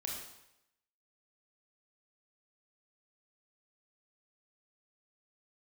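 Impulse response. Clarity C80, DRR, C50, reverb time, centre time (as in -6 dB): 5.0 dB, -2.0 dB, 2.0 dB, 0.85 s, 52 ms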